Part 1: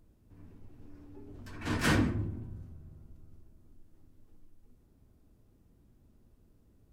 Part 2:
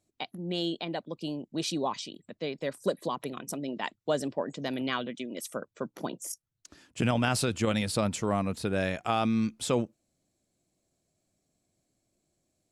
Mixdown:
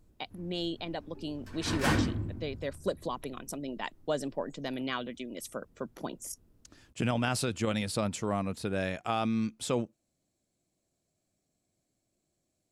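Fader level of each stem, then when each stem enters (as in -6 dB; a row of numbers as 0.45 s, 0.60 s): -0.5 dB, -3.0 dB; 0.00 s, 0.00 s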